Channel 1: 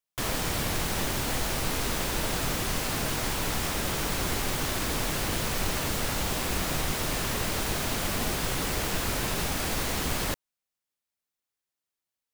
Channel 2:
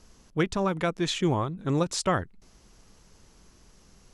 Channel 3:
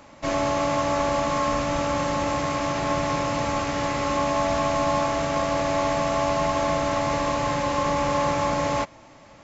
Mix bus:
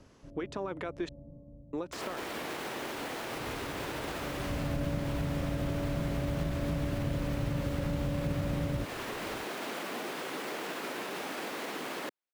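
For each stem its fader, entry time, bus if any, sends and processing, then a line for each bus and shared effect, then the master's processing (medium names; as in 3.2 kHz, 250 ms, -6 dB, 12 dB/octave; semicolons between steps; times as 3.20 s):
-2.0 dB, 1.75 s, bus A, no send, none
0.0 dB, 0.00 s, muted 1.09–1.73 s, bus A, no send, compression, threshold -28 dBFS, peak gain reduction 8.5 dB
1.33 s -11.5 dB -> 1.81 s -19.5 dB -> 3.22 s -19.5 dB -> 3.49 s -7 dB, 0.00 s, no bus, no send, Chebyshev low-pass 560 Hz, order 4; auto duck -17 dB, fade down 0.25 s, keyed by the second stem
bus A: 0.0 dB, high-pass 330 Hz 24 dB/octave; peak limiter -26.5 dBFS, peak gain reduction 8.5 dB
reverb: none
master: tone controls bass +15 dB, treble -11 dB; compression 2.5:1, threshold -31 dBFS, peak gain reduction 7 dB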